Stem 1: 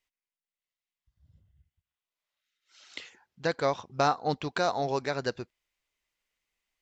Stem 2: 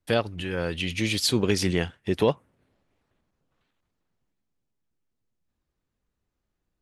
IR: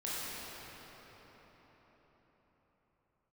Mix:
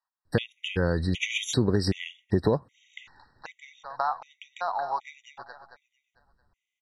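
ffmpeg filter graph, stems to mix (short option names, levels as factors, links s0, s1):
-filter_complex "[0:a]equalizer=f=930:t=o:w=1.7:g=13.5,acompressor=threshold=0.126:ratio=5,lowshelf=f=590:t=q:w=1.5:g=-13,volume=0.335,asplit=2[s0][s1];[s1]volume=0.282[s2];[1:a]lowshelf=f=150:g=8,acompressor=threshold=0.0631:ratio=6,adelay=250,volume=1.26[s3];[s2]aecho=0:1:224|448|672|896|1120|1344:1|0.45|0.202|0.0911|0.041|0.0185[s4];[s0][s3][s4]amix=inputs=3:normalize=0,dynaudnorm=f=120:g=3:m=1.41,lowpass=6700,afftfilt=real='re*gt(sin(2*PI*1.3*pts/sr)*(1-2*mod(floor(b*sr/1024/1900),2)),0)':imag='im*gt(sin(2*PI*1.3*pts/sr)*(1-2*mod(floor(b*sr/1024/1900),2)),0)':win_size=1024:overlap=0.75"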